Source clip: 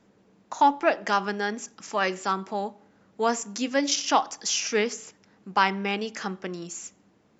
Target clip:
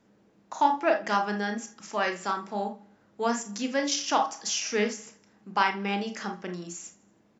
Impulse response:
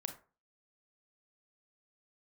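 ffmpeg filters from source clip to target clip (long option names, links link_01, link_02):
-filter_complex "[0:a]aecho=1:1:80|160|240|320:0.075|0.039|0.0203|0.0105[link_01];[1:a]atrim=start_sample=2205,atrim=end_sample=4410,asetrate=48510,aresample=44100[link_02];[link_01][link_02]afir=irnorm=-1:irlink=0"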